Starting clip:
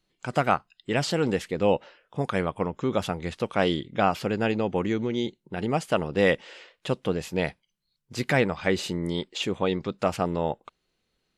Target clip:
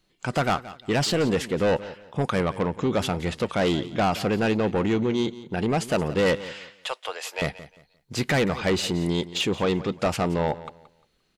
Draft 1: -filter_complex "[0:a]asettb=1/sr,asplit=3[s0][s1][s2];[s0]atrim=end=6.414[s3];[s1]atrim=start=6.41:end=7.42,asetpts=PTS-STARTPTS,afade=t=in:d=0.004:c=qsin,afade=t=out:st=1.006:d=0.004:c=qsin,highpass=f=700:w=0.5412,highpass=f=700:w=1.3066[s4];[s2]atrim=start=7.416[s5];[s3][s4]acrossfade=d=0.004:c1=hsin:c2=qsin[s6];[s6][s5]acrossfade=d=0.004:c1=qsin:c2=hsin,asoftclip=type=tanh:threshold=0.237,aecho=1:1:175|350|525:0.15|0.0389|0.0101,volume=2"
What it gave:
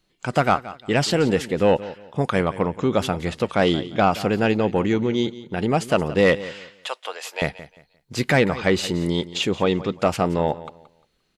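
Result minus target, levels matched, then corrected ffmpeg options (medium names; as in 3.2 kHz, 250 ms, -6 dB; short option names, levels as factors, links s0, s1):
saturation: distortion -11 dB
-filter_complex "[0:a]asettb=1/sr,asplit=3[s0][s1][s2];[s0]atrim=end=6.414[s3];[s1]atrim=start=6.41:end=7.42,asetpts=PTS-STARTPTS,afade=t=in:d=0.004:c=qsin,afade=t=out:st=1.006:d=0.004:c=qsin,highpass=f=700:w=0.5412,highpass=f=700:w=1.3066[s4];[s2]atrim=start=7.416[s5];[s3][s4]acrossfade=d=0.004:c1=hsin:c2=qsin[s6];[s6][s5]acrossfade=d=0.004:c1=qsin:c2=hsin,asoftclip=type=tanh:threshold=0.0708,aecho=1:1:175|350|525:0.15|0.0389|0.0101,volume=2"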